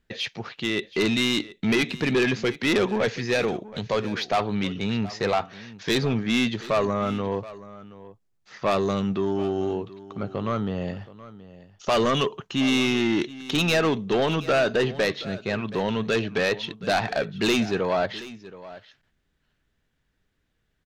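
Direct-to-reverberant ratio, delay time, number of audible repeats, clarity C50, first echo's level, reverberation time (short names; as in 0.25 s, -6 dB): none, 0.725 s, 1, none, -17.5 dB, none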